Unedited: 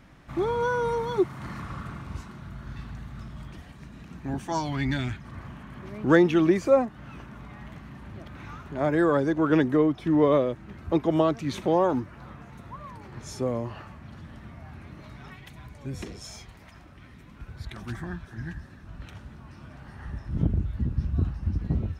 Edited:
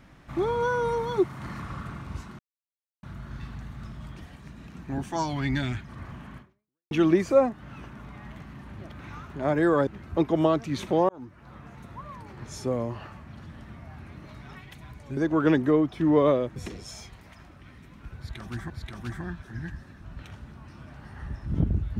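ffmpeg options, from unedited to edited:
-filter_complex "[0:a]asplit=8[a][b][c][d][e][f][g][h];[a]atrim=end=2.39,asetpts=PTS-STARTPTS,afade=t=out:st=2.386:d=0.004:c=hsin,apad=pad_dur=0.64[i];[b]atrim=start=2.39:end=6.27,asetpts=PTS-STARTPTS,afade=t=in:d=0.004:c=hsin,afade=t=out:st=3.34:d=0.54:c=exp[j];[c]atrim=start=6.27:end=9.232,asetpts=PTS-STARTPTS,afade=t=in:d=0.004:c=hsin[k];[d]atrim=start=10.618:end=11.84,asetpts=PTS-STARTPTS,afade=t=out:st=1.218:d=0.004:c=hsin[l];[e]atrim=start=11.84:end=15.922,asetpts=PTS-STARTPTS,afade=t=in:d=0.62[m];[f]atrim=start=9.228:end=10.622[n];[g]atrim=start=15.918:end=18.062[o];[h]atrim=start=17.528[p];[i][j][k]concat=n=3:v=0:a=1[q];[l][m]concat=n=2:v=0:a=1[r];[q][r]acrossfade=d=0.004:c1=hsin:c2=hsin[s];[s][n]acrossfade=d=0.004:c1=hsin:c2=hsin[t];[t][o]acrossfade=d=0.004:c1=hsin:c2=hsin[u];[u][p]acrossfade=d=0.004:c1=hsin:c2=hsin"

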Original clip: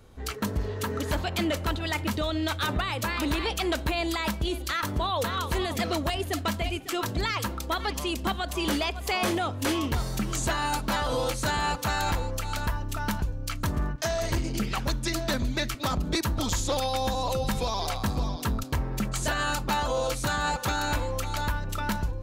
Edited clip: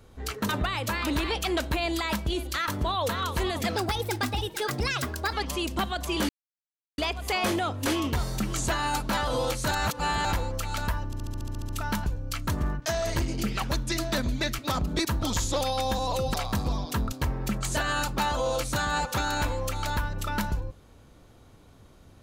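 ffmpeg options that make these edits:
-filter_complex "[0:a]asplit=17[a][b][c][d][e][f][g][h][i][j][k][l][m][n][o][p][q];[a]atrim=end=0.492[r];[b]atrim=start=2.638:end=5.914[s];[c]atrim=start=5.91:end=7.81,asetpts=PTS-STARTPTS,asetrate=53361,aresample=44100[t];[d]atrim=start=7.806:end=8.77,asetpts=PTS-STARTPTS,afade=t=out:st=0.96:d=0.004:c=hsin,apad=pad_dur=0.69[u];[e]atrim=start=8.77:end=11.502,asetpts=PTS-STARTPTS,afade=t=in:d=0.004:c=hsin[v];[f]atrim=start=11.498:end=12.042,asetpts=PTS-STARTPTS,areverse[w];[g]atrim=start=12.038:end=12.922[x];[h]atrim=start=12.848:end=12.922[y];[i]atrim=start=12.848:end=12.922[z];[j]atrim=start=12.848:end=12.922[aa];[k]atrim=start=12.848:end=12.922[ab];[l]atrim=start=12.848:end=12.922[ac];[m]atrim=start=12.848:end=12.922[ad];[n]atrim=start=12.848:end=12.922[ae];[o]atrim=start=12.848:end=12.922[af];[p]atrim=start=12.848:end=17.502[ag];[q]atrim=start=17.848[ah];[r][s]acrossfade=d=0.004:c1=hsin:c2=hsin[ai];[ai][t]acrossfade=d=0.004:c1=hsin:c2=hsin[aj];[u][v]concat=n=2:v=0:a=1[ak];[aj][ak]acrossfade=d=0.004:c1=hsin:c2=hsin[al];[al][w]acrossfade=d=0.004:c1=hsin:c2=hsin[am];[am][x]acrossfade=d=0.004:c1=hsin:c2=hsin[an];[an][y]acrossfade=d=0.004:c1=hsin:c2=hsin[ao];[ao][z]acrossfade=d=0.004:c1=hsin:c2=hsin[ap];[ap][aa]acrossfade=d=0.004:c1=hsin:c2=hsin[aq];[aq][ab]acrossfade=d=0.004:c1=hsin:c2=hsin[ar];[ar][ac]acrossfade=d=0.004:c1=hsin:c2=hsin[as];[as][ad]acrossfade=d=0.004:c1=hsin:c2=hsin[at];[at][ae]acrossfade=d=0.004:c1=hsin:c2=hsin[au];[au][af]acrossfade=d=0.004:c1=hsin:c2=hsin[av];[av][ag]acrossfade=d=0.004:c1=hsin:c2=hsin[aw];[aw][ah]acrossfade=d=0.004:c1=hsin:c2=hsin"

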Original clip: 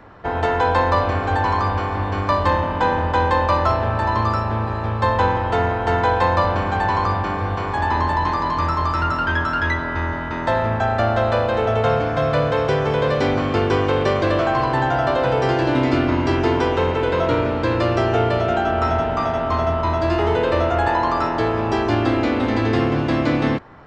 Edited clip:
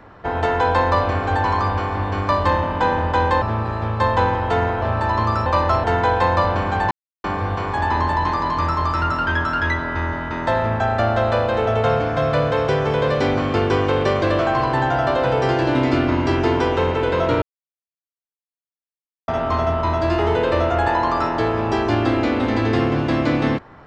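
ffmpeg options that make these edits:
-filter_complex "[0:a]asplit=9[a][b][c][d][e][f][g][h][i];[a]atrim=end=3.422[j];[b]atrim=start=4.438:end=5.842[k];[c]atrim=start=3.798:end=4.442[l];[d]atrim=start=3.418:end=3.802[m];[e]atrim=start=5.838:end=6.91,asetpts=PTS-STARTPTS,afade=t=out:st=1.068:d=0.004:c=hsin[n];[f]atrim=start=6.91:end=7.24,asetpts=PTS-STARTPTS,volume=0[o];[g]atrim=start=7.24:end=17.42,asetpts=PTS-STARTPTS,afade=t=in:d=0.004:c=hsin,afade=t=out:st=10.176:d=0.004:c=hsin[p];[h]atrim=start=17.42:end=19.28,asetpts=PTS-STARTPTS,volume=0[q];[i]atrim=start=19.28,asetpts=PTS-STARTPTS,afade=t=in:d=0.004:c=hsin[r];[j][k]acrossfade=d=0.004:c1=hsin:c2=hsin[s];[s][l]acrossfade=d=0.004:c1=hsin:c2=hsin[t];[t][m]acrossfade=d=0.004:c1=hsin:c2=hsin[u];[n][o][p][q][r]concat=n=5:v=0:a=1[v];[u][v]acrossfade=d=0.004:c1=hsin:c2=hsin"

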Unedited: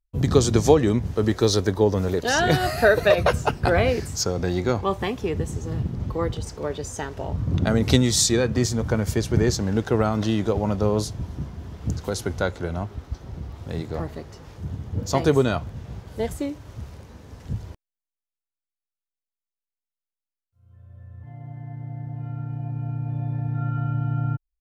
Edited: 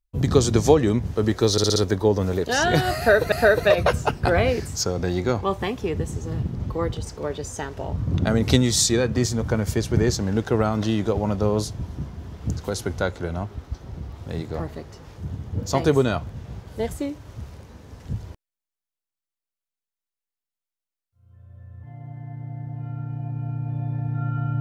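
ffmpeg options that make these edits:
-filter_complex "[0:a]asplit=6[a][b][c][d][e][f];[a]atrim=end=1.582[g];[b]atrim=start=1.518:end=1.582[h];[c]atrim=start=1.518:end=1.582[i];[d]atrim=start=1.518:end=1.582[j];[e]atrim=start=1.518:end=3.082[k];[f]atrim=start=2.718[l];[g][h]acrossfade=d=0.004:c1=hsin:c2=hsin[m];[m][i]acrossfade=d=0.004:c1=hsin:c2=hsin[n];[n][j]acrossfade=d=0.004:c1=hsin:c2=hsin[o];[o][k]acrossfade=d=0.004:c1=hsin:c2=hsin[p];[p][l]acrossfade=d=0.004:c1=hsin:c2=hsin"

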